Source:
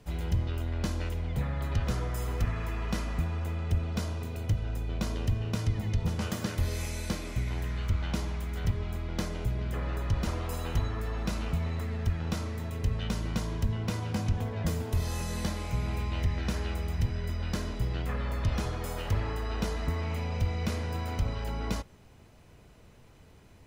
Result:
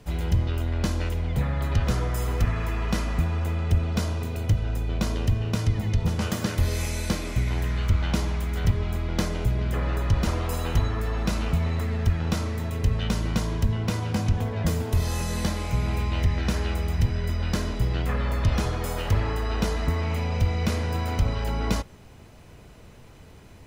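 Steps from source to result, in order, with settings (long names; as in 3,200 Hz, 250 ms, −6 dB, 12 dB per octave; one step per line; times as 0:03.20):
speech leveller 2 s
level +6 dB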